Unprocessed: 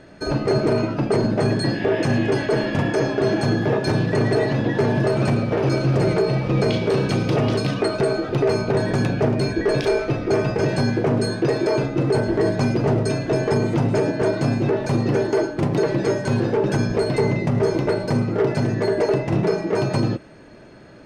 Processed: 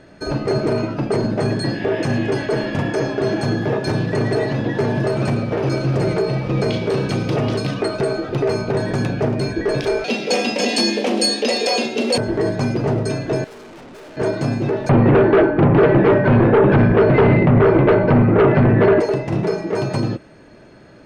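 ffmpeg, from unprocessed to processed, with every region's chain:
-filter_complex "[0:a]asettb=1/sr,asplit=3[s0][s1][s2];[s0]atrim=end=10.044[s3];[s1]atrim=start=10.04:end=12.18,asetpts=PTS-STARTPTS,afade=t=in:d=0.004:c=qsin,afade=t=out:st=2.136:d=0.004:c=qsin,highpass=46,highshelf=f=2000:t=q:w=1.5:g=13,afreqshift=100[s4];[s2]atrim=start=12.176[s5];[s3][s4]acrossfade=d=0.004:c1=hsin:c2=qsin[s6];[s6][s5]acrossfade=d=0.004:c1=qsin:c2=hsin,asettb=1/sr,asplit=3[s7][s8][s9];[s7]atrim=end=13.444[s10];[s8]atrim=start=13.44:end=14.17,asetpts=PTS-STARTPTS,afade=t=in:d=0.004:c=qsin,afade=t=out:st=0.726:d=0.004:c=qsin,highpass=320,lowpass=7400,aeval=exprs='(tanh(79.4*val(0)+0.15)-tanh(0.15))/79.4':c=same[s11];[s9]atrim=start=14.166[s12];[s10][s11]acrossfade=d=0.004:c1=hsin:c2=qsin[s13];[s13][s12]acrossfade=d=0.004:c1=qsin:c2=hsin,asettb=1/sr,asplit=3[s14][s15][s16];[s14]atrim=end=14.894[s17];[s15]atrim=start=14.89:end=19,asetpts=PTS-STARTPTS,afade=t=in:d=0.004:c=qsin,afade=t=out:st=4.106:d=0.004:c=qsin,lowpass=f=2300:w=0.5412,lowpass=f=2300:w=1.3066,aeval=exprs='0.398*sin(PI/2*2.24*val(0)/0.398)':c=same[s18];[s16]atrim=start=18.996[s19];[s17][s18]acrossfade=d=0.004:c1=hsin:c2=qsin[s20];[s20][s19]acrossfade=d=0.004:c1=qsin:c2=hsin"

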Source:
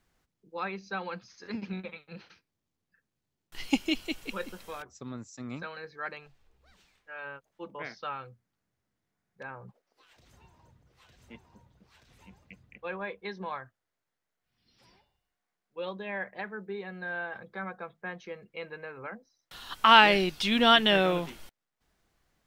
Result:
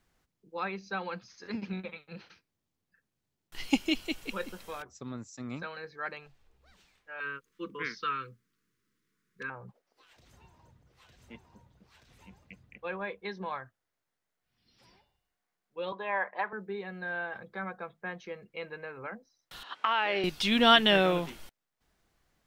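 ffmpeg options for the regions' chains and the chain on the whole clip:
-filter_complex "[0:a]asettb=1/sr,asplit=3[s0][s1][s2];[s0]atrim=end=7.204[s3];[s1]atrim=start=7.2:end=9.5,asetpts=PTS-STARTPTS,afade=t=in:d=0.004:c=qsin,afade=t=out:st=2.296:d=0.004:c=qsin,equalizer=f=87:w=1.4:g=-12,acontrast=37,asuperstop=centerf=710:order=8:qfactor=1.2[s4];[s2]atrim=start=9.496[s5];[s3][s4]acrossfade=d=0.004:c1=hsin:c2=qsin[s6];[s6][s5]acrossfade=d=0.004:c1=qsin:c2=hsin,asettb=1/sr,asplit=3[s7][s8][s9];[s7]atrim=end=15.924[s10];[s8]atrim=start=15.92:end=16.53,asetpts=PTS-STARTPTS,afade=t=in:d=0.004:c=qsin,afade=t=out:st=0.606:d=0.004:c=qsin,highpass=340,lowpass=4500,equalizer=f=1000:t=o:w=0.87:g=13[s11];[s9]atrim=start=16.526[s12];[s10][s11]acrossfade=d=0.004:c1=hsin:c2=qsin[s13];[s13][s12]acrossfade=d=0.004:c1=qsin:c2=hsin,asettb=1/sr,asplit=3[s14][s15][s16];[s14]atrim=end=19.634[s17];[s15]atrim=start=19.63:end=20.24,asetpts=PTS-STARTPTS,afade=t=in:d=0.004:c=qsin,afade=t=out:st=0.606:d=0.004:c=qsin,highpass=400,lowpass=2900,acompressor=threshold=0.0708:ratio=6:attack=3.2:release=140:knee=1:detection=peak[s18];[s16]atrim=start=20.236[s19];[s17][s18]acrossfade=d=0.004:c1=hsin:c2=qsin[s20];[s20][s19]acrossfade=d=0.004:c1=qsin:c2=hsin"

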